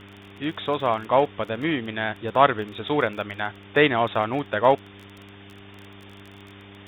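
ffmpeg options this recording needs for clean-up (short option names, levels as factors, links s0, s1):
-af "adeclick=t=4,bandreject=f=99.4:t=h:w=4,bandreject=f=198.8:t=h:w=4,bandreject=f=298.2:t=h:w=4,bandreject=f=397.6:t=h:w=4,afwtdn=0.0079"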